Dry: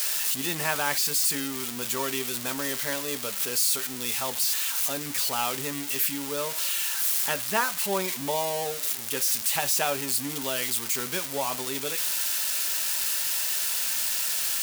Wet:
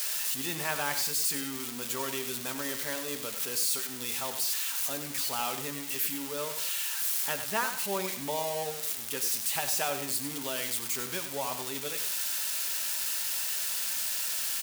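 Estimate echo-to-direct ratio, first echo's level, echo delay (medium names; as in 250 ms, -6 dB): -9.0 dB, -9.5 dB, 96 ms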